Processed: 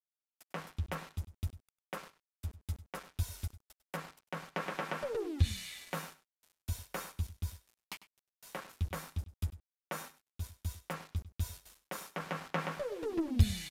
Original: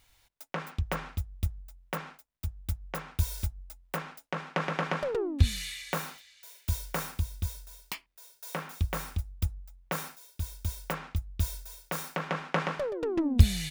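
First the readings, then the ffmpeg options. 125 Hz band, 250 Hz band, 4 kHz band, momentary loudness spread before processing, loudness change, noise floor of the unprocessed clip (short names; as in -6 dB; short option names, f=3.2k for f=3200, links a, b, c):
-6.0 dB, -6.0 dB, -6.5 dB, 13 LU, -6.5 dB, -68 dBFS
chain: -filter_complex "[0:a]flanger=delay=8.7:depth=2.4:regen=-20:speed=0.6:shape=sinusoidal,aeval=exprs='val(0)*gte(abs(val(0)),0.00596)':c=same,asplit=2[a][b];[b]adelay=99.13,volume=-16dB,highshelf=f=4k:g=-2.23[c];[a][c]amix=inputs=2:normalize=0,aresample=32000,aresample=44100,volume=-3dB"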